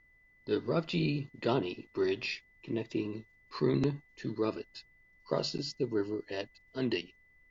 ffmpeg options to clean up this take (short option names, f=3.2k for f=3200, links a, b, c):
-af "bandreject=f=2k:w=30,agate=range=-21dB:threshold=-57dB"